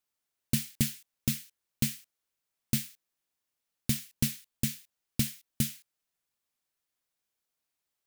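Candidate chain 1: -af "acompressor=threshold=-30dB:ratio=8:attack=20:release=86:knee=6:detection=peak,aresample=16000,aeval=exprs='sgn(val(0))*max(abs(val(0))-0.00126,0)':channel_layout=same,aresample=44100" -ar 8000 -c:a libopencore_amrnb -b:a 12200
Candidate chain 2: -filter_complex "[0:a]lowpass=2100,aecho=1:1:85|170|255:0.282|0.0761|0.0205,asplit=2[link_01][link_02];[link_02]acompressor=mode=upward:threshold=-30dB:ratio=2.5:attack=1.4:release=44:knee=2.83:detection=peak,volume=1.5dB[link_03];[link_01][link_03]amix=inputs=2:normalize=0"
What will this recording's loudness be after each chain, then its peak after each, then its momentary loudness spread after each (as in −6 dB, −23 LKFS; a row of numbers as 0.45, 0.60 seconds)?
−43.0, −30.0 LKFS; −21.5, −8.0 dBFS; 5, 11 LU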